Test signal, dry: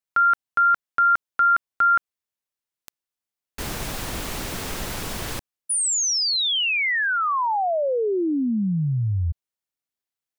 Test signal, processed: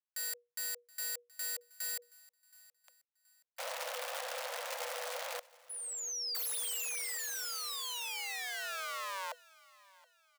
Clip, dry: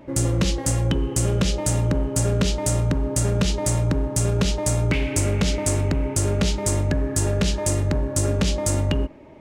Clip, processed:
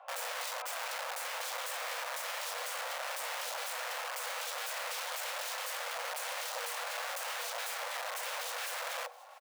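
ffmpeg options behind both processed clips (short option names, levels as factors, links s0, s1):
-af "lowpass=f=2300:p=1,aeval=exprs='(mod(18.8*val(0)+1,2)-1)/18.8':c=same,aecho=1:1:724|1448|2172:0.075|0.0285|0.0108,aeval=exprs='0.0596*(cos(1*acos(clip(val(0)/0.0596,-1,1)))-cos(1*PI/2))+0.00211*(cos(4*acos(clip(val(0)/0.0596,-1,1)))-cos(4*PI/2))':c=same,afreqshift=480,volume=0.376"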